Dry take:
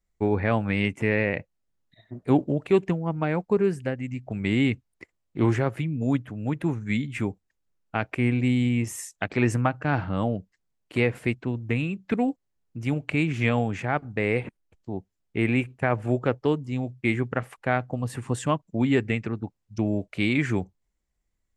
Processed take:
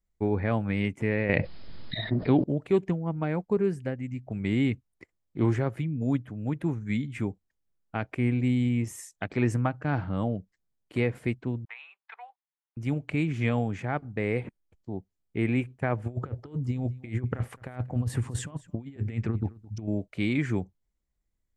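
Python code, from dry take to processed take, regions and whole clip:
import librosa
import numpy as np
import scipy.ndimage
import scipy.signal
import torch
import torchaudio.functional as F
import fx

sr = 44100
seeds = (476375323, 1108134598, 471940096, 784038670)

y = fx.chain(x, sr, fx.brickwall_lowpass(high_hz=5200.0),
    fx.high_shelf(hz=3500.0, db=11.5),
    fx.env_flatten(amount_pct=70), at=(1.29, 2.44))
y = fx.chain(y, sr, fx.ellip_highpass(hz=830.0, order=4, stop_db=70),
    fx.air_absorb(metres=240.0), at=(11.65, 12.77))
y = fx.chain(y, sr, fx.over_compress(threshold_db=-30.0, ratio=-0.5),
    fx.peak_eq(hz=86.0, db=8.0, octaves=0.9),
    fx.echo_single(ms=216, db=-21.0), at=(16.06, 19.88))
y = fx.low_shelf(y, sr, hz=480.0, db=5.0)
y = fx.notch(y, sr, hz=2700.0, q=19.0)
y = y * 10.0 ** (-6.5 / 20.0)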